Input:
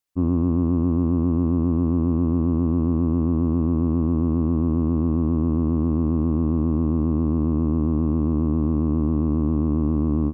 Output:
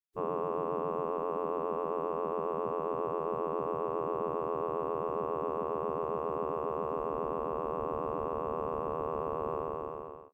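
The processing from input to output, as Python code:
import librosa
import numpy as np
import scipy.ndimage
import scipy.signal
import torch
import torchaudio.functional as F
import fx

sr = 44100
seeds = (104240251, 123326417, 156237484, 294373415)

y = fx.fade_out_tail(x, sr, length_s=0.8)
y = fx.spec_gate(y, sr, threshold_db=-15, keep='weak')
y = y * 10.0 ** (5.0 / 20.0)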